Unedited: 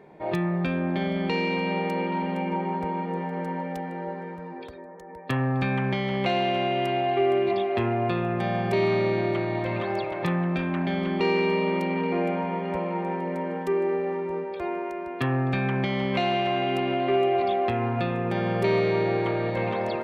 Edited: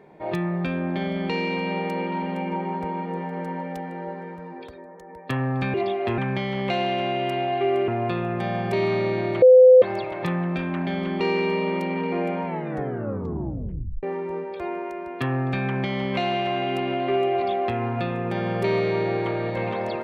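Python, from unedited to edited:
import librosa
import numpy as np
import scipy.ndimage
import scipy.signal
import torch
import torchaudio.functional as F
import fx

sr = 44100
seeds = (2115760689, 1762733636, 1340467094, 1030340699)

y = fx.edit(x, sr, fx.move(start_s=7.44, length_s=0.44, to_s=5.74),
    fx.bleep(start_s=9.42, length_s=0.4, hz=510.0, db=-7.5),
    fx.tape_stop(start_s=12.45, length_s=1.58), tone=tone)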